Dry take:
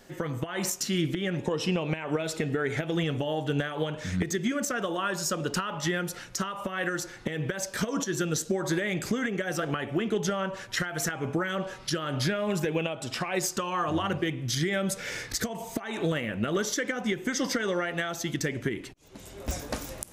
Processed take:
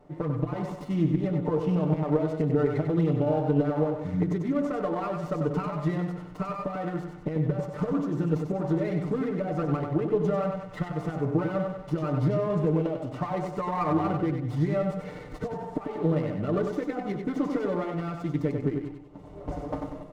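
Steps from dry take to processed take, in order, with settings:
variable-slope delta modulation 64 kbit/s
Savitzky-Golay smoothing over 65 samples
comb filter 6.7 ms, depth 80%
repeating echo 95 ms, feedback 41%, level −5.5 dB
windowed peak hold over 5 samples

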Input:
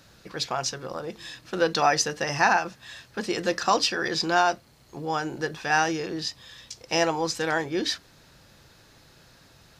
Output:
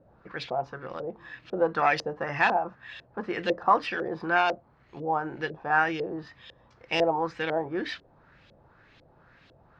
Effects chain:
phase distortion by the signal itself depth 0.058 ms
auto-filter low-pass saw up 2 Hz 510–3,400 Hz
level −4 dB

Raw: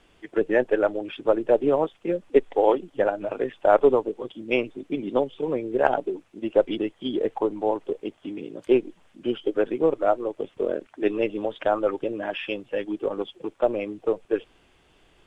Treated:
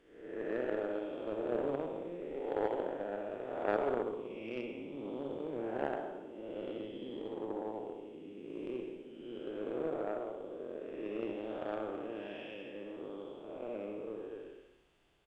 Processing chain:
spectrum smeared in time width 358 ms
repeating echo 64 ms, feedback 59%, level −7 dB
harmonic generator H 3 −14 dB, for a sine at −12 dBFS
level −4 dB

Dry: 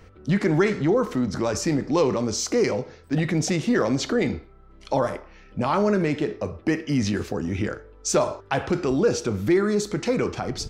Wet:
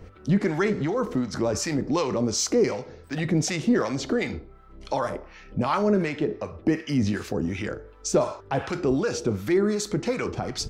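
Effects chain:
0:06.09–0:06.58: low-pass filter 4,000 Hz 6 dB per octave
in parallel at 0 dB: downward compressor, threshold −35 dBFS, peak gain reduction 18 dB
on the sum: two-band tremolo in antiphase 2.7 Hz, depth 70%, crossover 780 Hz

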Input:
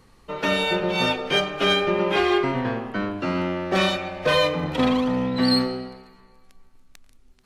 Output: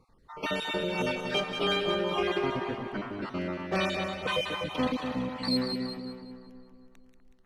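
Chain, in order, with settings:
time-frequency cells dropped at random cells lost 35%
echo with a time of its own for lows and highs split 1,800 Hz, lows 247 ms, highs 186 ms, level −6 dB
one half of a high-frequency compander decoder only
level −7.5 dB

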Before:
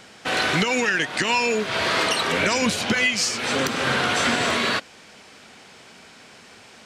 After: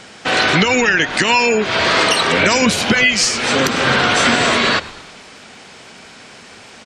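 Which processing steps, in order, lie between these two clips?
gate on every frequency bin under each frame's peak −30 dB strong
echo with shifted repeats 110 ms, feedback 60%, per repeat −78 Hz, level −19.5 dB
level +7.5 dB

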